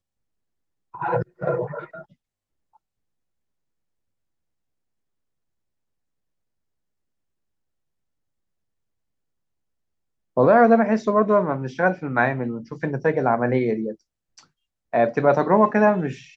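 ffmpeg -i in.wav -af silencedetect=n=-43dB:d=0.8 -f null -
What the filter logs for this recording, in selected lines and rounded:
silence_start: 0.00
silence_end: 0.94 | silence_duration: 0.94
silence_start: 2.03
silence_end: 10.37 | silence_duration: 8.34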